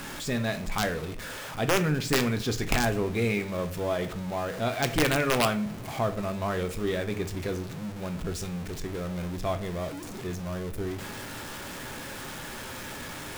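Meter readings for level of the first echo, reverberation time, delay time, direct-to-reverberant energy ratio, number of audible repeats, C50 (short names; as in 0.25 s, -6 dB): none, 0.45 s, none, 7.0 dB, none, 13.5 dB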